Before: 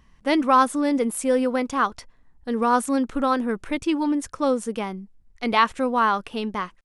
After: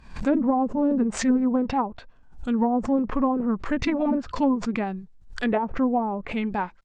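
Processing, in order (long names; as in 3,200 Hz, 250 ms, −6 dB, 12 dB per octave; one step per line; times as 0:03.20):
treble cut that deepens with the level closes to 560 Hz, closed at −16.5 dBFS
formants moved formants −4 semitones
background raised ahead of every attack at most 120 dB per second
level +1.5 dB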